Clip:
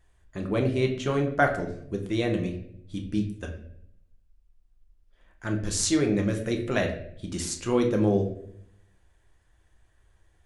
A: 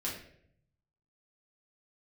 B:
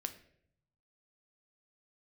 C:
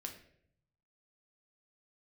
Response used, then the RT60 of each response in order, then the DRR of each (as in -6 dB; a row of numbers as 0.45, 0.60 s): C; 0.65, 0.65, 0.65 s; -6.0, 7.5, 2.5 dB